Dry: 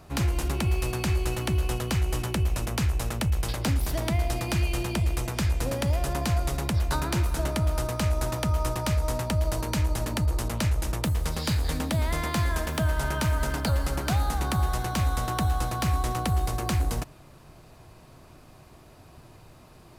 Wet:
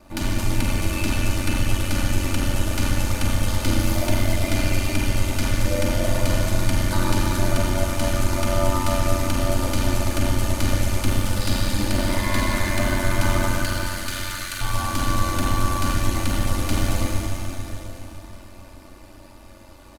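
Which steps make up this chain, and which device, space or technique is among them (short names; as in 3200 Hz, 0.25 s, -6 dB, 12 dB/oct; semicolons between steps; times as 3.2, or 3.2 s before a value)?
13.47–14.61 steep high-pass 1300 Hz 48 dB/oct; Schroeder reverb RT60 3.7 s, combs from 32 ms, DRR -5.5 dB; ring-modulated robot voice (ring modulator 46 Hz; comb 3.4 ms, depth 83%)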